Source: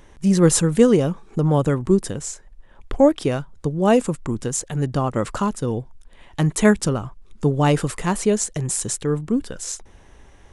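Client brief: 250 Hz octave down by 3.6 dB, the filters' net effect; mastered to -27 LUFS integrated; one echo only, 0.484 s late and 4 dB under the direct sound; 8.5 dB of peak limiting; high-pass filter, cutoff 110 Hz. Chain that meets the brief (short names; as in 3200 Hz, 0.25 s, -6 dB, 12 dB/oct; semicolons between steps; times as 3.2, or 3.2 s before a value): HPF 110 Hz; bell 250 Hz -4.5 dB; limiter -13.5 dBFS; echo 0.484 s -4 dB; gain -3 dB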